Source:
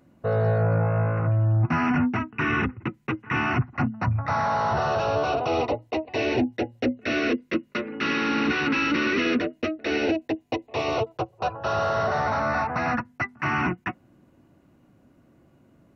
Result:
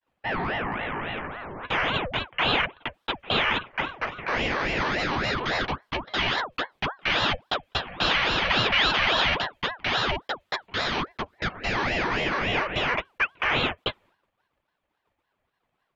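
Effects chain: expander -48 dBFS; HPF 320 Hz 12 dB/oct; band shelf 2500 Hz +8.5 dB; 3.59–4.88 flutter echo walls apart 7.9 m, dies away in 0.32 s; ring modulator with a swept carrier 810 Hz, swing 70%, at 3.6 Hz

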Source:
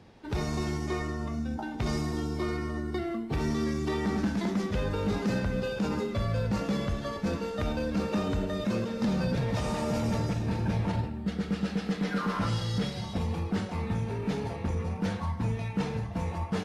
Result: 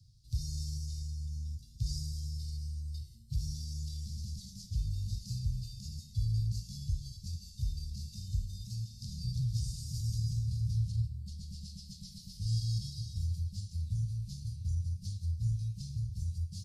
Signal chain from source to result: Chebyshev band-stop 130–4600 Hz, order 4

